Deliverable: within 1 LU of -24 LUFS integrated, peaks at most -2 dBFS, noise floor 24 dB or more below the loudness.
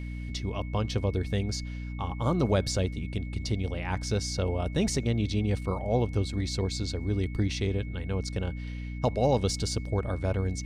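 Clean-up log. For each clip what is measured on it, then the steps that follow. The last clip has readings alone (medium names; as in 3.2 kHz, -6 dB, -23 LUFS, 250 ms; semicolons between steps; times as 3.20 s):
hum 60 Hz; highest harmonic 300 Hz; hum level -33 dBFS; steady tone 2.2 kHz; tone level -49 dBFS; loudness -30.0 LUFS; peak level -13.0 dBFS; loudness target -24.0 LUFS
-> hum notches 60/120/180/240/300 Hz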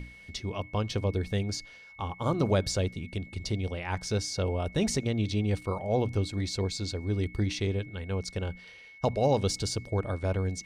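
hum not found; steady tone 2.2 kHz; tone level -49 dBFS
-> band-stop 2.2 kHz, Q 30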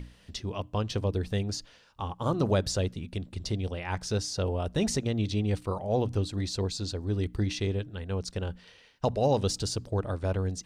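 steady tone not found; loudness -31.0 LUFS; peak level -14.0 dBFS; loudness target -24.0 LUFS
-> trim +7 dB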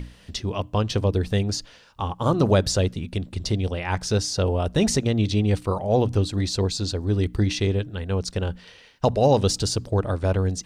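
loudness -24.0 LUFS; peak level -7.0 dBFS; noise floor -51 dBFS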